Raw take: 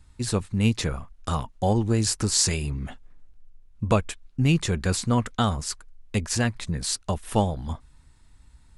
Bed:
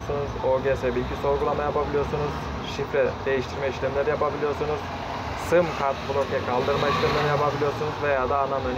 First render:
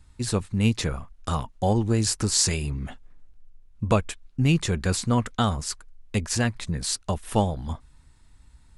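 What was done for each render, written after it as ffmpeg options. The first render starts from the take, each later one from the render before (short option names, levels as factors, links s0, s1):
-af anull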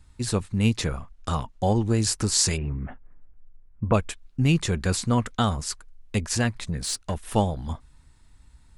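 -filter_complex "[0:a]asettb=1/sr,asplit=3[s0][s1][s2];[s0]atrim=end=0.964[s3];[s1]atrim=start=0.96:end=1.85,asetpts=PTS-STARTPTS,afade=t=in:d=0.004:c=qsin,afade=t=out:st=0.886:d=0.004:c=qsin,lowpass=9500[s4];[s2]atrim=start=1.846[s5];[s3][s4]acrossfade=d=0.004:c1=hsin:c2=qsin[s6];[s6][s5]acrossfade=d=0.004:c1=qsin:c2=hsin,asplit=3[s7][s8][s9];[s7]afade=t=out:st=2.56:d=0.02[s10];[s8]lowpass=f=2000:w=0.5412,lowpass=f=2000:w=1.3066,afade=t=in:st=2.56:d=0.02,afade=t=out:st=3.93:d=0.02[s11];[s9]afade=t=in:st=3.93:d=0.02[s12];[s10][s11][s12]amix=inputs=3:normalize=0,asettb=1/sr,asplit=3[s13][s14][s15];[s13]atrim=end=6.614[s16];[s14]atrim=start=6.61:end=7.34,asetpts=PTS-STARTPTS,afade=t=in:d=0.004:c=qsin,afade=t=out:st=0.726:d=0.004:c=qsin,aeval=exprs='(tanh(8.91*val(0)+0.15)-tanh(0.15))/8.91':c=same[s17];[s15]atrim=start=7.336[s18];[s16][s17]acrossfade=d=0.004:c1=hsin:c2=qsin[s19];[s19][s18]acrossfade=d=0.004:c1=qsin:c2=hsin"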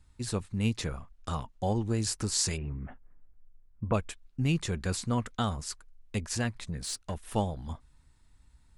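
-af "volume=0.447"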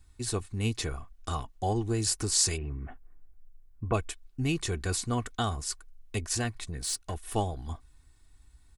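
-af "highshelf=f=8000:g=7.5,aecho=1:1:2.7:0.52"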